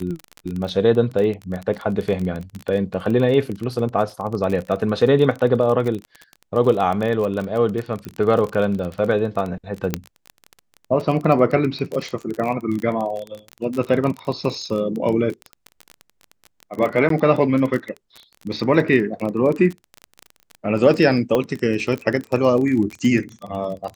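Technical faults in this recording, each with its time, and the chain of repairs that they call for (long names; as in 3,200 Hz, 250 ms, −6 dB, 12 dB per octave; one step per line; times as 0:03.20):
surface crackle 26 per second −24 dBFS
0:08.05: click −20 dBFS
0:09.94: click −5 dBFS
0:17.09–0:17.10: drop-out 13 ms
0:21.35: click −8 dBFS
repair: click removal
repair the gap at 0:17.09, 13 ms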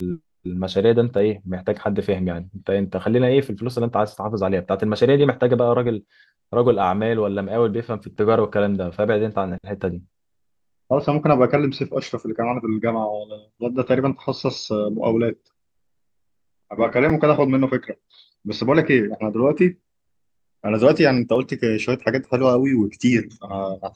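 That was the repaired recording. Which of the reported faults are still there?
0:21.35: click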